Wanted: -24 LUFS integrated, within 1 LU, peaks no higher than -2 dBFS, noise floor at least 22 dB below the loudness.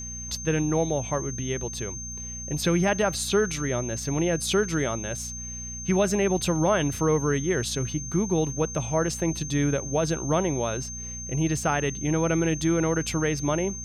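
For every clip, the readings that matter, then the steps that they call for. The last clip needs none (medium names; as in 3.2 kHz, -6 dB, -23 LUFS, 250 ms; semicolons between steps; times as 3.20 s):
hum 60 Hz; highest harmonic 240 Hz; hum level -38 dBFS; steady tone 6.3 kHz; tone level -35 dBFS; loudness -26.0 LUFS; peak level -11.5 dBFS; loudness target -24.0 LUFS
-> de-hum 60 Hz, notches 4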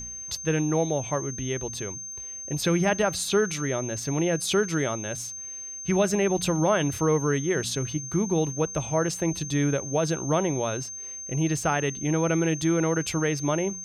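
hum not found; steady tone 6.3 kHz; tone level -35 dBFS
-> band-stop 6.3 kHz, Q 30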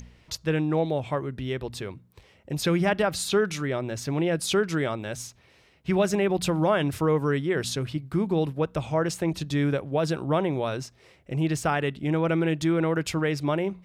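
steady tone not found; loudness -26.5 LUFS; peak level -11.5 dBFS; loudness target -24.0 LUFS
-> trim +2.5 dB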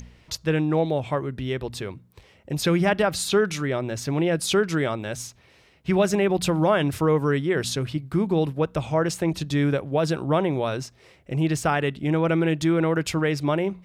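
loudness -24.0 LUFS; peak level -9.0 dBFS; noise floor -57 dBFS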